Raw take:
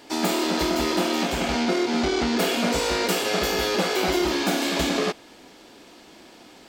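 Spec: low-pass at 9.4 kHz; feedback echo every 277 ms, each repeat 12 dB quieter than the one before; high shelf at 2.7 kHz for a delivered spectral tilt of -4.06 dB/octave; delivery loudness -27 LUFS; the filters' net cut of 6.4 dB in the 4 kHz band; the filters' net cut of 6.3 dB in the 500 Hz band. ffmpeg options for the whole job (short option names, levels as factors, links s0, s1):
-af "lowpass=9400,equalizer=f=500:t=o:g=-9,highshelf=f=2700:g=-3.5,equalizer=f=4000:t=o:g=-5,aecho=1:1:277|554|831:0.251|0.0628|0.0157"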